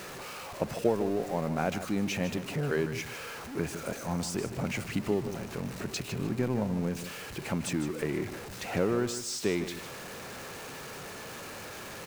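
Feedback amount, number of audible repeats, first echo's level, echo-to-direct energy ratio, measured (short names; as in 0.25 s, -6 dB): 22%, 2, -11.0 dB, -11.0 dB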